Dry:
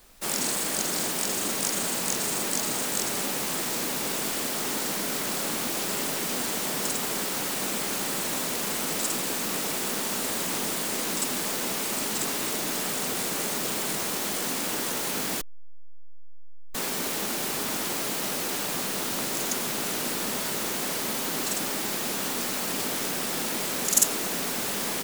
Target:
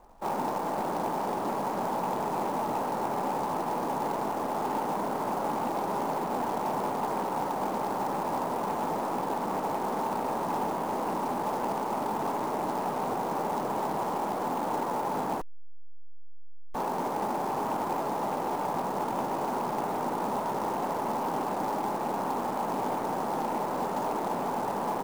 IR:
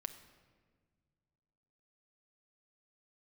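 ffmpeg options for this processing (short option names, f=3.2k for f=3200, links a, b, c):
-af "lowpass=f=890:t=q:w=4.1,asoftclip=type=tanh:threshold=-20dB,acrusher=bits=4:mode=log:mix=0:aa=0.000001"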